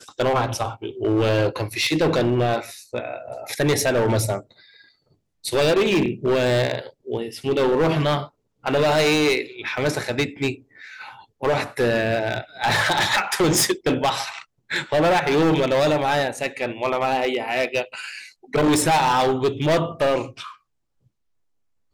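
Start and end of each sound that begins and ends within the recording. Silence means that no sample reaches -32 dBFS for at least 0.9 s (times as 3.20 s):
5.45–20.51 s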